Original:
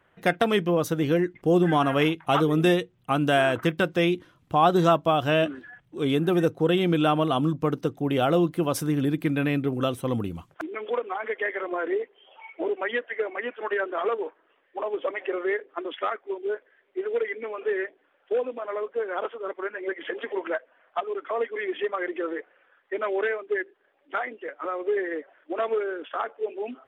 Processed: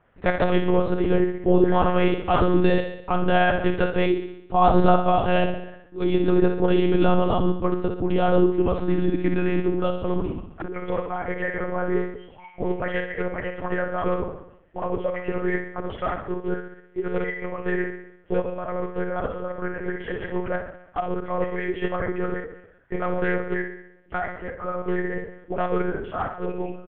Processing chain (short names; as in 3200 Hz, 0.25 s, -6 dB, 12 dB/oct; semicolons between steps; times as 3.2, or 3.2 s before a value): doubler 43 ms -9 dB; feedback echo 66 ms, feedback 56%, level -8 dB; monotone LPC vocoder at 8 kHz 180 Hz; high shelf 2300 Hz -10.5 dB; gain +2.5 dB